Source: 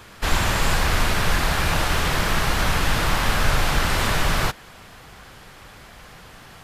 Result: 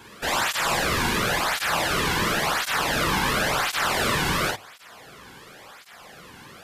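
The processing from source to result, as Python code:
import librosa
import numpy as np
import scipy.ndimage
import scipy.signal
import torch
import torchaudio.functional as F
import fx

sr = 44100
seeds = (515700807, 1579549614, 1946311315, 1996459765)

y = fx.hum_notches(x, sr, base_hz=50, count=2)
y = fx.doubler(y, sr, ms=48.0, db=-3)
y = fx.flanger_cancel(y, sr, hz=0.94, depth_ms=1.7)
y = y * 10.0 ** (1.0 / 20.0)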